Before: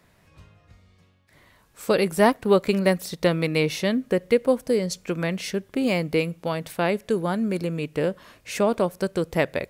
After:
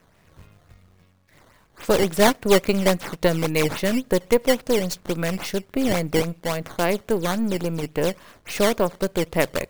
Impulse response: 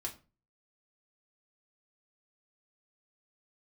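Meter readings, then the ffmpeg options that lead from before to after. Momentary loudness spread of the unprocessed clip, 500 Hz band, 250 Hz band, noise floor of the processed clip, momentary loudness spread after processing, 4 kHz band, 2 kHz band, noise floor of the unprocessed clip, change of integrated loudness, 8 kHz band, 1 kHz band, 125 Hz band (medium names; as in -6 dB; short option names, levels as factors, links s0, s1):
8 LU, +1.0 dB, +1.0 dB, -58 dBFS, 8 LU, +4.0 dB, +2.0 dB, -60 dBFS, +1.5 dB, +6.5 dB, +1.5 dB, +1.0 dB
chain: -af "aeval=exprs='if(lt(val(0),0),0.447*val(0),val(0))':c=same,acrusher=samples=10:mix=1:aa=0.000001:lfo=1:lforange=16:lforate=3.6,volume=1.58"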